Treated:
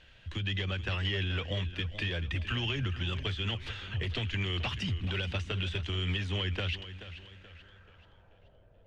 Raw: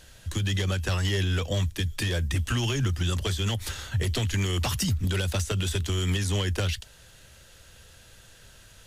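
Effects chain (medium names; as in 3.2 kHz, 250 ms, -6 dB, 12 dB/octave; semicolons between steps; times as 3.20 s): low-pass sweep 2.8 kHz -> 610 Hz, 7.24–8.57 s; modulated delay 432 ms, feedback 41%, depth 74 cents, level -13 dB; trim -7.5 dB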